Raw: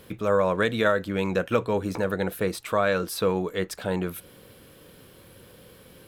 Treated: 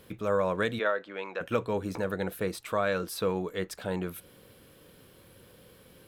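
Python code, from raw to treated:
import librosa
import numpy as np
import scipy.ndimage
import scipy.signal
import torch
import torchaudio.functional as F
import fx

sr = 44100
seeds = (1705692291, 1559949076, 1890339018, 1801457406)

y = fx.bandpass_edges(x, sr, low_hz=fx.line((0.78, 380.0), (1.4, 640.0)), high_hz=3200.0, at=(0.78, 1.4), fade=0.02)
y = y * librosa.db_to_amplitude(-5.0)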